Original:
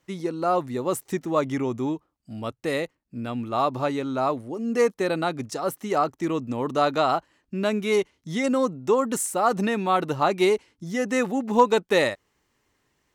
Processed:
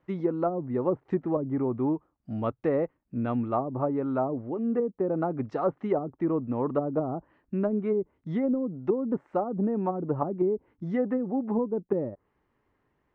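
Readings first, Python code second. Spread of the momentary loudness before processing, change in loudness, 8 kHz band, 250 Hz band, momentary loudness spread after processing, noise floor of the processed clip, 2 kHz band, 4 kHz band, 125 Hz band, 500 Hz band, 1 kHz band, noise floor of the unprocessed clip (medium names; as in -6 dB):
10 LU, -4.5 dB, under -40 dB, -0.5 dB, 4 LU, -75 dBFS, -17.5 dB, under -25 dB, 0.0 dB, -4.0 dB, -9.5 dB, -73 dBFS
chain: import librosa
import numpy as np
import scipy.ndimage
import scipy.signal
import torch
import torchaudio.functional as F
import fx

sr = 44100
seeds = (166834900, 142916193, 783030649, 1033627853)

y = fx.env_lowpass_down(x, sr, base_hz=310.0, full_db=-18.5)
y = scipy.signal.sosfilt(scipy.signal.butter(2, 1500.0, 'lowpass', fs=sr, output='sos'), y)
y = fx.rider(y, sr, range_db=4, speed_s=0.5)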